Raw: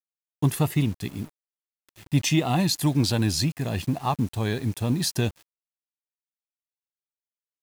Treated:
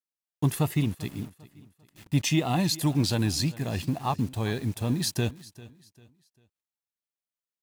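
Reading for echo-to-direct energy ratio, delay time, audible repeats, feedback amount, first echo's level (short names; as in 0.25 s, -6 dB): -19.0 dB, 0.396 s, 2, 34%, -19.5 dB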